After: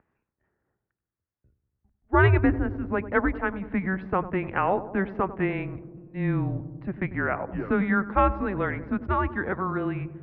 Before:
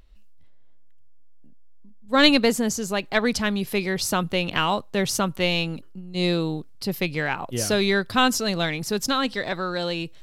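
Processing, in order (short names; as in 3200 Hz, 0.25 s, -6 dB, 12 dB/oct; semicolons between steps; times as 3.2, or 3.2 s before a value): mistuned SSB -190 Hz 180–2100 Hz; HPF 60 Hz 12 dB/oct; darkening echo 96 ms, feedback 80%, low-pass 880 Hz, level -13 dB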